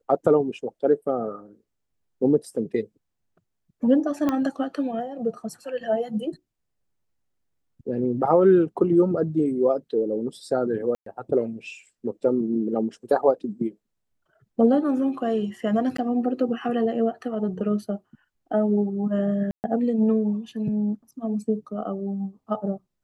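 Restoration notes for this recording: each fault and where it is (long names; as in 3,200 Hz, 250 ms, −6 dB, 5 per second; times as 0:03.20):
0:04.29: click −12 dBFS
0:10.95–0:11.06: drop-out 113 ms
0:15.97–0:15.98: drop-out 14 ms
0:19.51–0:19.64: drop-out 129 ms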